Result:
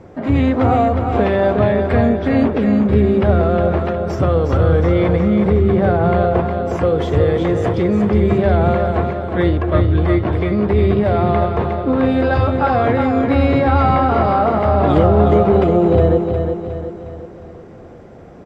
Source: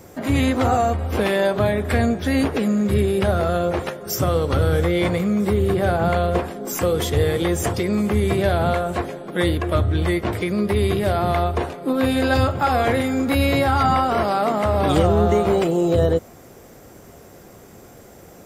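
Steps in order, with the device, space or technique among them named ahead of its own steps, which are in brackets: phone in a pocket (LPF 4000 Hz 12 dB/oct; high shelf 2100 Hz -12 dB); feedback echo 0.361 s, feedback 47%, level -6 dB; gain +4.5 dB

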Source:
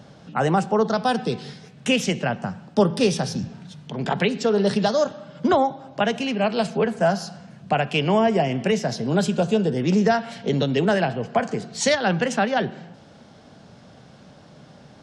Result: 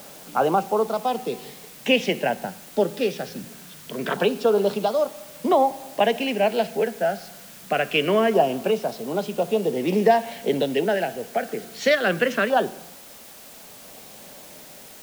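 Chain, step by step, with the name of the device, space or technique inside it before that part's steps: shortwave radio (BPF 340–2900 Hz; tremolo 0.49 Hz, depth 48%; LFO notch saw down 0.24 Hz 790–2100 Hz; white noise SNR 21 dB); gain +5 dB

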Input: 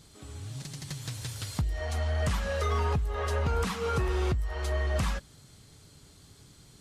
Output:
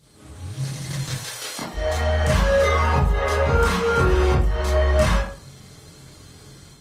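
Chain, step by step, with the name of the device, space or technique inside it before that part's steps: 1.13–1.73 HPF 660 Hz -> 180 Hz 24 dB/oct; far-field microphone of a smart speaker (reverb RT60 0.50 s, pre-delay 21 ms, DRR -7.5 dB; HPF 100 Hz 6 dB/oct; AGC gain up to 6.5 dB; gain -2.5 dB; Opus 24 kbps 48000 Hz)

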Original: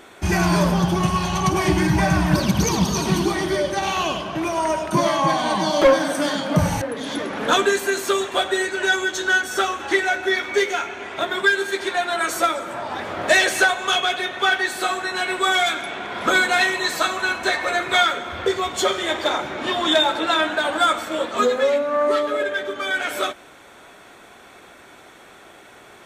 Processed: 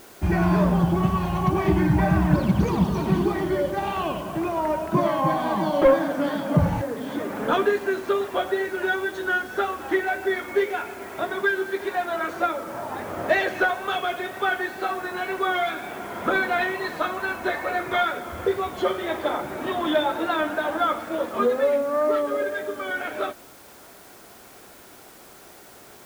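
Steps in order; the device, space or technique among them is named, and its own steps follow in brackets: cassette deck with a dirty head (tape spacing loss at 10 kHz 38 dB; wow and flutter; white noise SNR 26 dB)

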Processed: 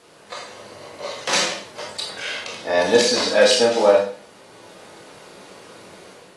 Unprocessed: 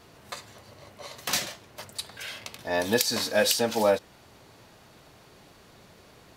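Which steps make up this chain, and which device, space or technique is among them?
filmed off a television (BPF 210–7000 Hz; bell 500 Hz +7.5 dB 0.29 oct; reverb RT60 0.45 s, pre-delay 19 ms, DRR -1.5 dB; white noise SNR 32 dB; AGC gain up to 5.5 dB; AAC 32 kbps 24000 Hz)

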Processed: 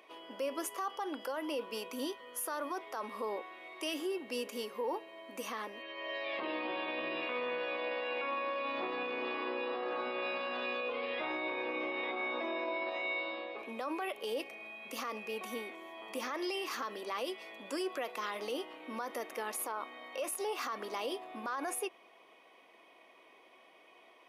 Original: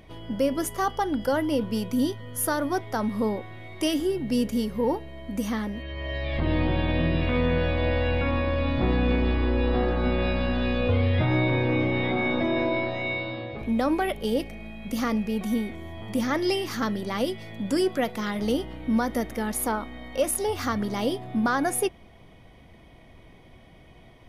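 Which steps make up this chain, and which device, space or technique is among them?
laptop speaker (HPF 360 Hz 24 dB/oct; bell 1100 Hz +9 dB 0.31 oct; bell 2600 Hz +9.5 dB 0.22 oct; limiter -22.5 dBFS, peak gain reduction 12 dB); gain -6 dB

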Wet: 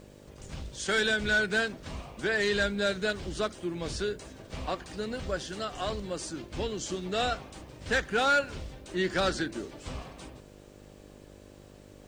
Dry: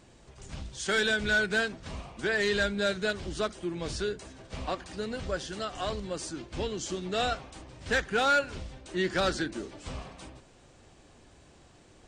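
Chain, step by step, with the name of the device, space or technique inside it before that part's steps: video cassette with head-switching buzz (buzz 50 Hz, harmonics 12, -53 dBFS -1 dB/oct; white noise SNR 40 dB)

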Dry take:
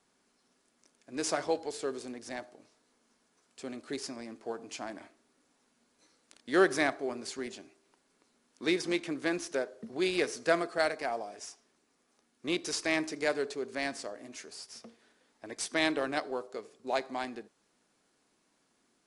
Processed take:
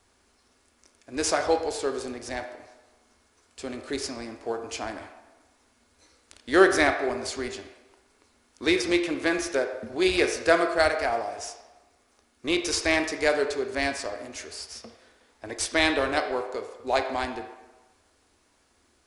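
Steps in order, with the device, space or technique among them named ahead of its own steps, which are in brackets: filtered reverb send (on a send: HPF 330 Hz + LPF 4700 Hz + reverb RT60 1.2 s, pre-delay 20 ms, DRR 6 dB); on the sum: resonant low shelf 110 Hz +11 dB, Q 3; gain +7 dB

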